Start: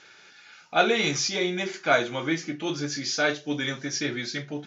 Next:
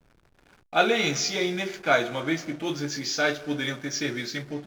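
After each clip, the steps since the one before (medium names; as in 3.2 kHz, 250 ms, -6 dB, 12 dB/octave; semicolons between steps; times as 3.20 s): algorithmic reverb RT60 2 s, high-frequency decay 0.9×, pre-delay 75 ms, DRR 16 dB; hysteresis with a dead band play -39.5 dBFS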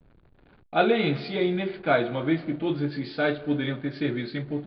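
steep low-pass 4.5 kHz 96 dB/octave; tilt shelf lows +5.5 dB, about 700 Hz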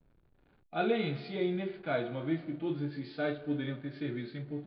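harmonic-percussive split percussive -9 dB; trim -6.5 dB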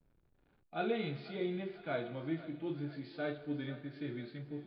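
thinning echo 495 ms, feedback 59%, high-pass 510 Hz, level -15.5 dB; trim -5 dB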